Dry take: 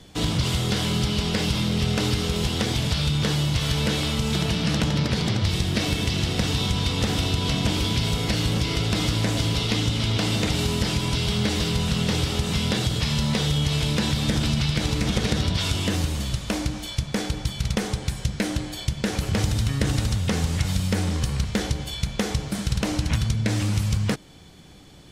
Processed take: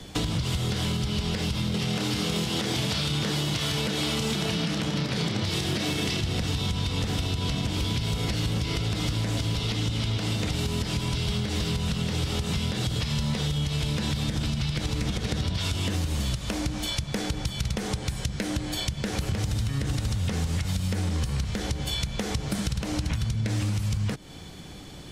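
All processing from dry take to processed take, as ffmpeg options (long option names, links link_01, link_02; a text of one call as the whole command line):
ffmpeg -i in.wav -filter_complex "[0:a]asettb=1/sr,asplit=3[link_01][link_02][link_03];[link_01]atrim=end=1.744[link_04];[link_02]atrim=start=1.74:end=6.21,asetpts=PTS-STARTPTS,afade=type=in:duration=0.004:curve=qsin,afade=type=out:start_time=4.466:duration=0.004:curve=qsin,highpass=190,asplit=2[link_05][link_06];[link_06]adelay=30,volume=-8dB[link_07];[link_05][link_07]amix=inputs=2:normalize=0,atrim=end_sample=197127,acontrast=78[link_08];[link_03]atrim=start=6.206[link_09];[link_04][link_08]acrossfade=duration=0.004:curve1=hsin:curve2=qsin[link_10];[link_10][link_09]acrossfade=duration=0.004:curve1=qsin:curve2=hsin,acrossover=split=140[link_11][link_12];[link_12]acompressor=threshold=-30dB:ratio=2[link_13];[link_11][link_13]amix=inputs=2:normalize=0,alimiter=limit=-19.5dB:level=0:latency=1:release=259,acompressor=threshold=-29dB:ratio=6,volume=5.5dB" out.wav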